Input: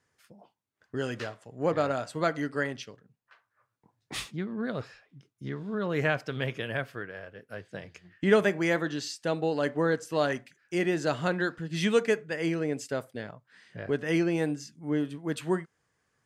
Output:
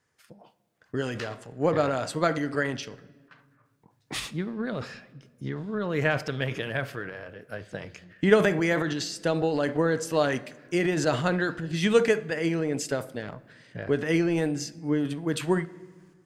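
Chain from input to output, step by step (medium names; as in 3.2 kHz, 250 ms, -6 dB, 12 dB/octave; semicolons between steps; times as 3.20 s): transient shaper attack +5 dB, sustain +9 dB; on a send: reverberation RT60 1.6 s, pre-delay 6 ms, DRR 17 dB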